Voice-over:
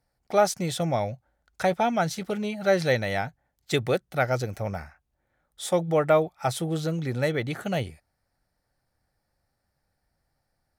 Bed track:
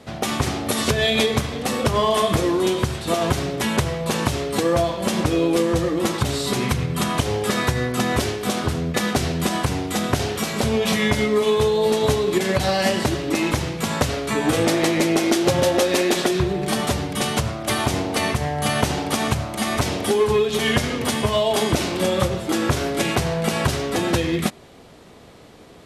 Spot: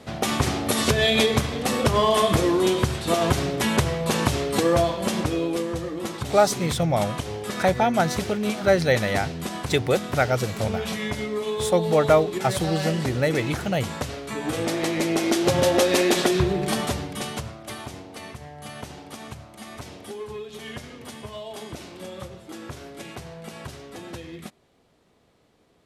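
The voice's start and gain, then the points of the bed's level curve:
6.00 s, +3.0 dB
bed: 0:04.83 −0.5 dB
0:05.77 −9 dB
0:14.30 −9 dB
0:15.78 −0.5 dB
0:16.56 −0.5 dB
0:18.03 −17 dB

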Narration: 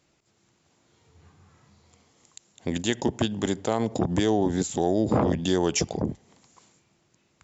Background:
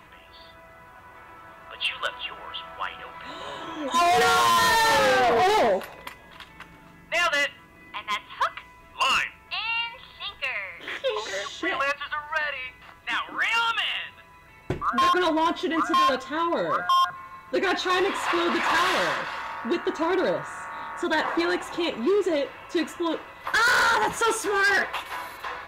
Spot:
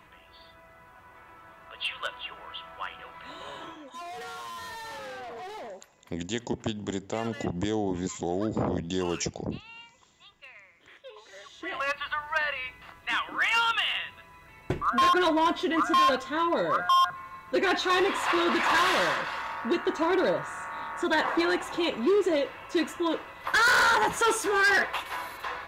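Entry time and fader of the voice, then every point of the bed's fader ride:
3.45 s, −6.0 dB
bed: 0:03.66 −5 dB
0:03.92 −20 dB
0:11.24 −20 dB
0:11.99 −1 dB

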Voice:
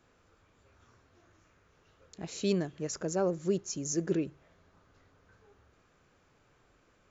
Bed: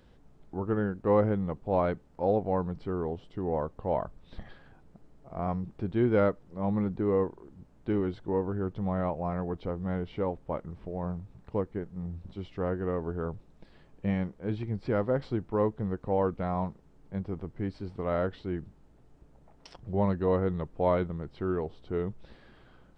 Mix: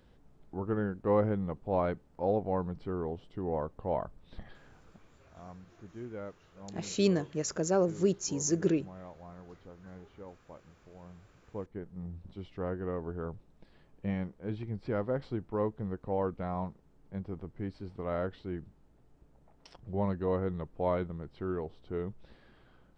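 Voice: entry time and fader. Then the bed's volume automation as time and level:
4.55 s, +2.5 dB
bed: 0:04.97 −3 dB
0:05.30 −17.5 dB
0:11.09 −17.5 dB
0:11.90 −4.5 dB

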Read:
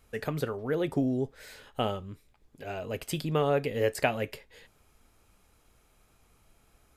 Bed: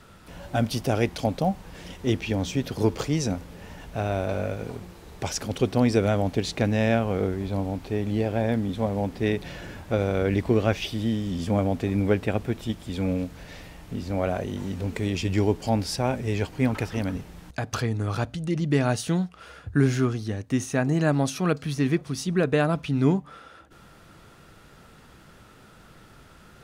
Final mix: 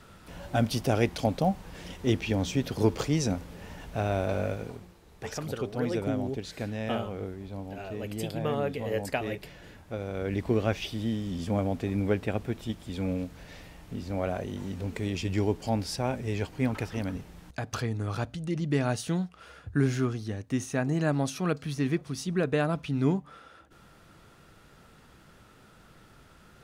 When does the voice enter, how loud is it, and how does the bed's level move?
5.10 s, −4.0 dB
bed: 0:04.51 −1.5 dB
0:04.99 −11 dB
0:10.03 −11 dB
0:10.49 −4.5 dB

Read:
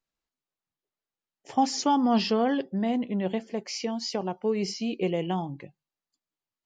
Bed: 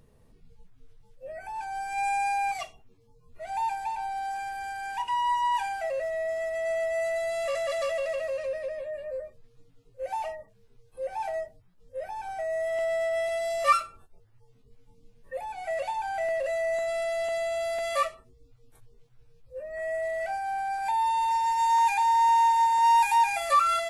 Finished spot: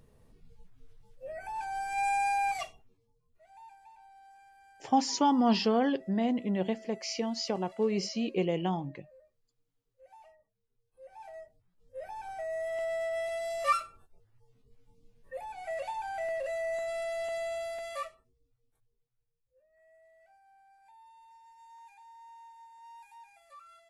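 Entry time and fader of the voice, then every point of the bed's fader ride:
3.35 s, −2.0 dB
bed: 0:02.68 −1.5 dB
0:03.49 −23.5 dB
0:10.62 −23.5 dB
0:12.08 −5.5 dB
0:17.52 −5.5 dB
0:19.67 −31.5 dB

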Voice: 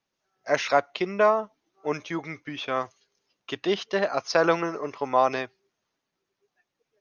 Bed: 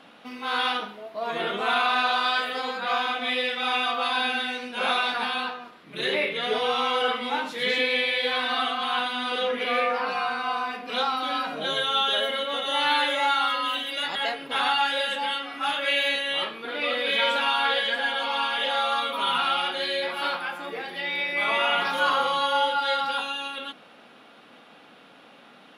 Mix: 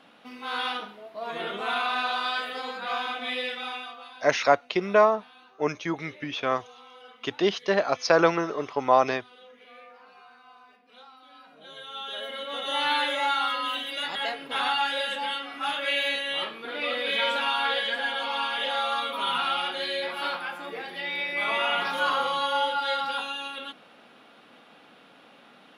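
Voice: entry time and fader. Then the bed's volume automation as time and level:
3.75 s, +1.5 dB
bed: 0:03.53 −4.5 dB
0:04.27 −25 dB
0:11.30 −25 dB
0:12.70 −2.5 dB

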